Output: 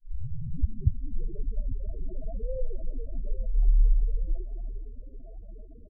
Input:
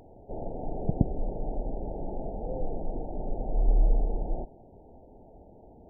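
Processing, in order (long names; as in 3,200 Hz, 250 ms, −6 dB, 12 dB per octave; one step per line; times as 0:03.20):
turntable start at the beginning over 1.52 s
in parallel at 0 dB: downward compressor, threshold −33 dBFS, peak gain reduction 18 dB
on the sum: spectral peaks only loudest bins 4
repeating echo 845 ms, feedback 38%, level −15.5 dB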